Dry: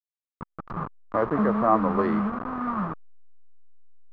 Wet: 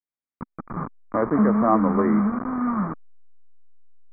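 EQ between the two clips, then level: brick-wall FIR low-pass 2400 Hz; bell 250 Hz +7.5 dB 0.88 oct; 0.0 dB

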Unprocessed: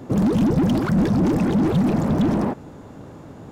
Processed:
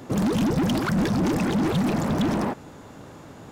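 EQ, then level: tilt shelf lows -5 dB; 0.0 dB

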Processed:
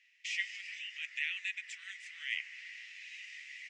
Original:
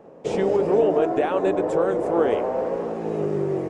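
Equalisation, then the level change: rippled Chebyshev high-pass 1900 Hz, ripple 3 dB; dynamic EQ 3800 Hz, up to -5 dB, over -59 dBFS, Q 3; air absorption 150 m; +10.0 dB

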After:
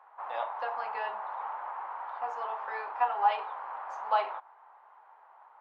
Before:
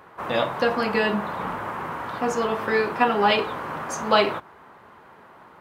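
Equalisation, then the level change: ladder high-pass 730 Hz, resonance 60%; tape spacing loss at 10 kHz 30 dB; 0.0 dB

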